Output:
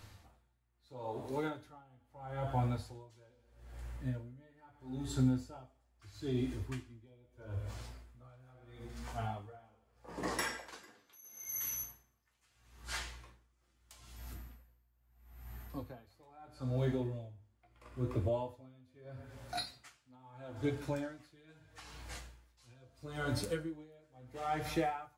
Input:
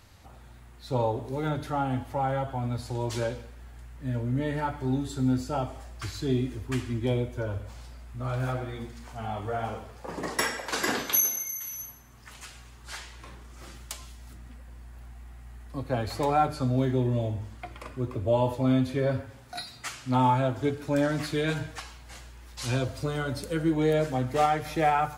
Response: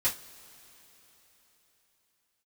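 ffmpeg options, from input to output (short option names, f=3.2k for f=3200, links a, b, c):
-filter_complex "[0:a]alimiter=limit=-21dB:level=0:latency=1:release=455,asettb=1/sr,asplit=3[a][b][c];[a]atrim=end=0.874[d];[b]atrim=start=0.87:end=1.64,asetpts=PTS-STARTPTS,afade=t=in:d=0.004:c=qsin,afade=t=out:st=0.766:d=0.004:c=qsin,highpass=f=200:p=1[e];[c]atrim=start=1.636[f];[d][e]acrossfade=d=0.004:c1=hsin:c2=qsin[g];[g][f]acrossfade=d=0.004:c1=qsin:c2=hsin,asettb=1/sr,asplit=3[h][i][j];[h]atrim=end=14.164[k];[i]atrim=start=14.16:end=16.22,asetpts=PTS-STARTPTS,afade=t=in:d=0.004:c=qsin,afade=t=out:st=2.056:d=0.004:c=qsin,aeval=exprs='val(0)+0.00141*sin(2*PI*13000*n/s)':c=same[l];[j]atrim=start=16.216[m];[k][l]acrossfade=d=0.004:c1=hsin:c2=qsin[n];[n][m]acrossfade=d=0.004:c1=qsin:c2=hsin,flanger=delay=9.6:depth=7.8:regen=-39:speed=0.64:shape=triangular,asplit=2[o][p];[1:a]atrim=start_sample=2205,asetrate=41454,aresample=44100[q];[p][q]afir=irnorm=-1:irlink=0,volume=-16dB[r];[o][r]amix=inputs=2:normalize=0,aeval=exprs='val(0)*pow(10,-31*(0.5-0.5*cos(2*PI*0.77*n/s))/20)':c=same,volume=2dB"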